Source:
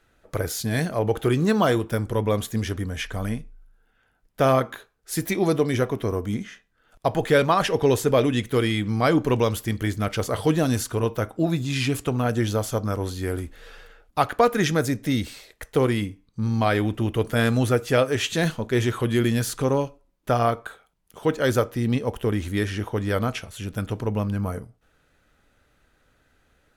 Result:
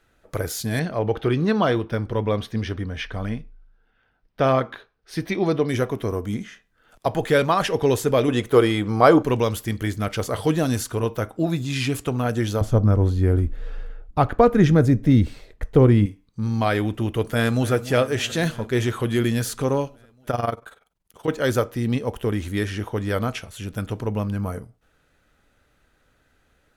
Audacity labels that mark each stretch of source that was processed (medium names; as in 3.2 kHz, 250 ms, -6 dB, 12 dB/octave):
0.790000	5.690000	Savitzky-Golay filter over 15 samples
6.430000	7.060000	three bands compressed up and down depth 40%
8.280000	9.230000	high-order bell 690 Hz +8 dB 2.3 oct
12.610000	16.060000	tilt EQ -3.5 dB/octave
17.180000	17.730000	echo throw 290 ms, feedback 75%, level -15.5 dB
20.300000	21.280000	AM modulator 21 Hz, depth 70%